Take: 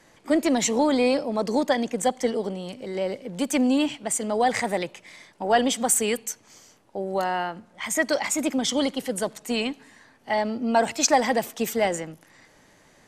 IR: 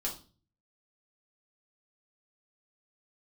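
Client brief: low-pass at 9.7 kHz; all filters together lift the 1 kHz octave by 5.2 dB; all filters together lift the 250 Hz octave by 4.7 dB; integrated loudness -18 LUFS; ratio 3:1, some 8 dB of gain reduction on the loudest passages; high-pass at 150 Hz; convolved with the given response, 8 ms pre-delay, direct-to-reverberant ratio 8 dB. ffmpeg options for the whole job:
-filter_complex "[0:a]highpass=150,lowpass=9700,equalizer=f=250:t=o:g=5.5,equalizer=f=1000:t=o:g=7,acompressor=threshold=0.0891:ratio=3,asplit=2[s0][s1];[1:a]atrim=start_sample=2205,adelay=8[s2];[s1][s2]afir=irnorm=-1:irlink=0,volume=0.316[s3];[s0][s3]amix=inputs=2:normalize=0,volume=2.11"

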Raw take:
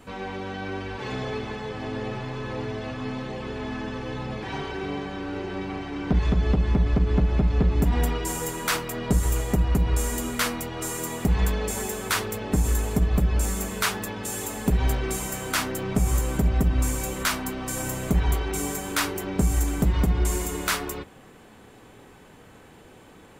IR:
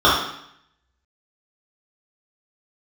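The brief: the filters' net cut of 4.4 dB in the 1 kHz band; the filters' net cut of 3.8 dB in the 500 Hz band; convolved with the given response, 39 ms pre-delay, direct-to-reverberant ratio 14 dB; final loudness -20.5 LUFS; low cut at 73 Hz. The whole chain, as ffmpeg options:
-filter_complex "[0:a]highpass=73,equalizer=f=500:t=o:g=-4,equalizer=f=1000:t=o:g=-4.5,asplit=2[s0][s1];[1:a]atrim=start_sample=2205,adelay=39[s2];[s1][s2]afir=irnorm=-1:irlink=0,volume=0.0106[s3];[s0][s3]amix=inputs=2:normalize=0,volume=2.66"

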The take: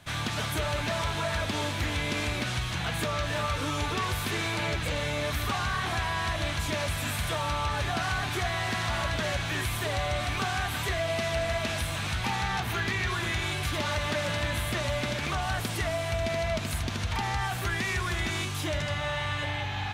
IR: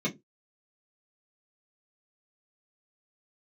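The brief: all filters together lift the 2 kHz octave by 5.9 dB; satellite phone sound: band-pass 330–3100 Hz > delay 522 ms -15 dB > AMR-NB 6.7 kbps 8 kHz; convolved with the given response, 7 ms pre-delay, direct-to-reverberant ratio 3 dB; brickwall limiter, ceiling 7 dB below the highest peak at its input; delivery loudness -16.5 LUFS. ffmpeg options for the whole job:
-filter_complex "[0:a]equalizer=f=2000:t=o:g=8,alimiter=limit=0.0891:level=0:latency=1,asplit=2[s0][s1];[1:a]atrim=start_sample=2205,adelay=7[s2];[s1][s2]afir=irnorm=-1:irlink=0,volume=0.316[s3];[s0][s3]amix=inputs=2:normalize=0,highpass=330,lowpass=3100,aecho=1:1:522:0.178,volume=5.96" -ar 8000 -c:a libopencore_amrnb -b:a 6700

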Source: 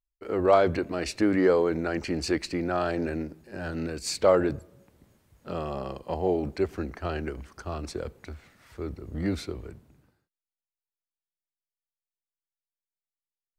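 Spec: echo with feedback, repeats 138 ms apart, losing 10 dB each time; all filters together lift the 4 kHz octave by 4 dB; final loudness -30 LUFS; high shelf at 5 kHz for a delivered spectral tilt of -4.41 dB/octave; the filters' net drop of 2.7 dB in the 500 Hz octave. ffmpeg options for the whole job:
-af "equalizer=f=500:t=o:g=-3.5,equalizer=f=4000:t=o:g=7,highshelf=f=5000:g=-4.5,aecho=1:1:138|276|414|552:0.316|0.101|0.0324|0.0104,volume=0.891"

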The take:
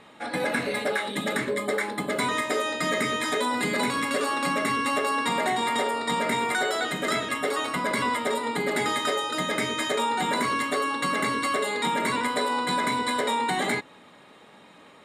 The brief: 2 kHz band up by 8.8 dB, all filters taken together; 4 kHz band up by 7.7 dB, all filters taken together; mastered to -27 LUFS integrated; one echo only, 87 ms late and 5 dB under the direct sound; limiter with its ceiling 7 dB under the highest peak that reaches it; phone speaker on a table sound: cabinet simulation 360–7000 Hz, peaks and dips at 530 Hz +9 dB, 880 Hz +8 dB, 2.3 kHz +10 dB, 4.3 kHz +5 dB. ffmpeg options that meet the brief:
-af "equalizer=f=2000:t=o:g=3,equalizer=f=4000:t=o:g=4.5,alimiter=limit=0.133:level=0:latency=1,highpass=f=360:w=0.5412,highpass=f=360:w=1.3066,equalizer=f=530:t=q:w=4:g=9,equalizer=f=880:t=q:w=4:g=8,equalizer=f=2300:t=q:w=4:g=10,equalizer=f=4300:t=q:w=4:g=5,lowpass=f=7000:w=0.5412,lowpass=f=7000:w=1.3066,aecho=1:1:87:0.562,volume=0.447"

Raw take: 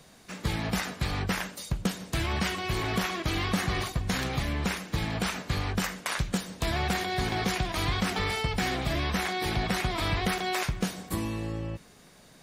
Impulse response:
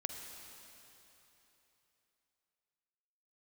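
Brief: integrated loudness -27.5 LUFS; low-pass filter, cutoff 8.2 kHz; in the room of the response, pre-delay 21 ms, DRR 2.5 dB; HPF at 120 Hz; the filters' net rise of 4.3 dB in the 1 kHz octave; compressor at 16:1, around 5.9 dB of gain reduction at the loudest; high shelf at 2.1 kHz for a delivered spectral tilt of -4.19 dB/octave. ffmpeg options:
-filter_complex "[0:a]highpass=120,lowpass=8200,equalizer=f=1000:t=o:g=7.5,highshelf=f=2100:g=-7,acompressor=threshold=0.0355:ratio=16,asplit=2[s0][s1];[1:a]atrim=start_sample=2205,adelay=21[s2];[s1][s2]afir=irnorm=-1:irlink=0,volume=0.75[s3];[s0][s3]amix=inputs=2:normalize=0,volume=1.78"

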